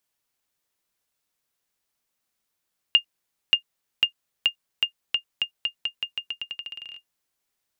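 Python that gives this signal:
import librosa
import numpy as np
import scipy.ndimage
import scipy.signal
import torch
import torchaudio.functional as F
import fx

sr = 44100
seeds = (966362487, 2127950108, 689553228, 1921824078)

y = fx.bouncing_ball(sr, first_gap_s=0.58, ratio=0.86, hz=2820.0, decay_ms=95.0, level_db=-6.0)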